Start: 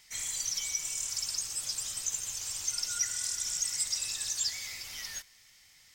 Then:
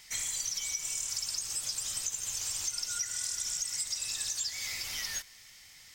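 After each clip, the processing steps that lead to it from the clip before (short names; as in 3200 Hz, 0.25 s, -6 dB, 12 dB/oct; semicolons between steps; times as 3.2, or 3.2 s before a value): compressor, threshold -37 dBFS, peak gain reduction 11.5 dB; gain +5.5 dB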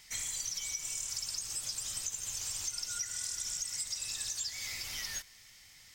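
low shelf 250 Hz +4 dB; gain -3 dB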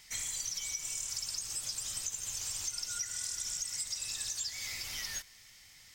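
nothing audible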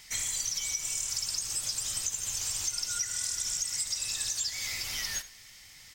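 echo 79 ms -16.5 dB; gain +5 dB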